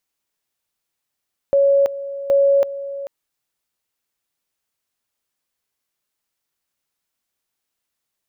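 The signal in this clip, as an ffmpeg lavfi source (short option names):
-f lavfi -i "aevalsrc='pow(10,(-11-14.5*gte(mod(t,0.77),0.33))/20)*sin(2*PI*557*t)':d=1.54:s=44100"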